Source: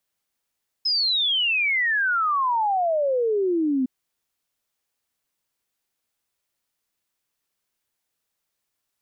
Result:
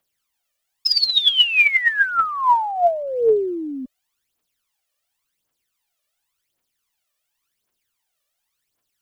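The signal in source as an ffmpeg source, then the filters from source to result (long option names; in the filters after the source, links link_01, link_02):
-f lavfi -i "aevalsrc='0.112*clip(min(t,3.01-t)/0.01,0,1)*sin(2*PI*5200*3.01/log(250/5200)*(exp(log(250/5200)*t/3.01)-1))':duration=3.01:sample_rate=44100"
-af "bass=frequency=250:gain=-5,treble=frequency=4000:gain=0,aphaser=in_gain=1:out_gain=1:delay=1.8:decay=0.71:speed=0.91:type=triangular,equalizer=frequency=3000:width_type=o:width=0.59:gain=3"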